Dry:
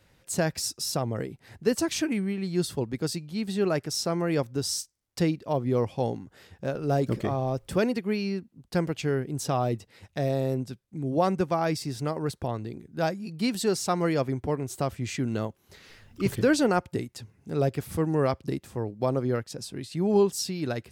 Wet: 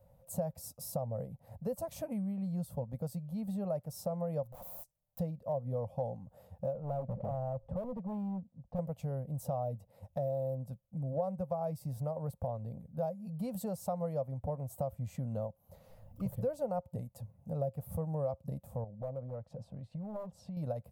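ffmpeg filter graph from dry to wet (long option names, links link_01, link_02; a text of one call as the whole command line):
ffmpeg -i in.wav -filter_complex "[0:a]asettb=1/sr,asplit=3[link_01][link_02][link_03];[link_01]atrim=end=4.454[link_04];[link_02]atrim=start=4.45:end=5.19,asetpts=PTS-STARTPTS,afade=type=in:duration=0.004:curve=qsin,afade=type=out:start_time=0.736:duration=0.004:curve=qsin,aecho=1:1:6.6:0.52,atrim=end_sample=32634,acompressor=threshold=-30dB:ratio=12:attack=3.2:release=140:knee=1:detection=peak,aeval=exprs='(mod(79.4*val(0)+1,2)-1)/79.4':channel_layout=same[link_05];[link_03]atrim=start=5.186[link_06];[link_04][link_05]acrossfade=duration=0.004:curve1=hsin:curve2=qsin[link_07];[link_07][link_06]acrossfade=duration=0.004:curve1=qsin:curve2=hsin,asettb=1/sr,asplit=3[link_08][link_09][link_10];[link_08]atrim=end=6.734[link_11];[link_09]atrim=start=6.73:end=8.79,asetpts=PTS-STARTPTS,afade=type=in:duration=0.004:curve=qsin,afade=type=out:start_time=2.056:duration=0.004:curve=qsin,lowpass=1500,asoftclip=type=hard:threshold=-28dB[link_12];[link_10]atrim=start=8.786[link_13];[link_11][link_12]acrossfade=duration=0.004:curve1=hsin:curve2=qsin[link_14];[link_14][link_13]acrossfade=duration=0.004:curve1=qsin:curve2=hsin,asettb=1/sr,asplit=3[link_15][link_16][link_17];[link_15]atrim=end=18.844[link_18];[link_16]atrim=start=18.84:end=20.57,asetpts=PTS-STARTPTS,afade=type=in:duration=0.004:curve=qsin,afade=type=out:start_time=1.726:duration=0.004:curve=qsin,lowpass=3100,aeval=exprs='0.106*(abs(mod(val(0)/0.106+3,4)-2)-1)':channel_layout=same,acompressor=threshold=-36dB:ratio=5:attack=3.2:release=140:knee=1:detection=peak[link_19];[link_17]atrim=start=20.566[link_20];[link_18][link_19]acrossfade=duration=0.004:curve1=hsin:curve2=qsin[link_21];[link_21][link_20]acrossfade=duration=0.004:curve1=qsin:curve2=hsin,firequalizer=gain_entry='entry(180,0);entry(360,-26);entry(530,6);entry(1600,-23);entry(5100,-22);entry(13000,-1)':delay=0.05:min_phase=1,acompressor=threshold=-35dB:ratio=3" out.wav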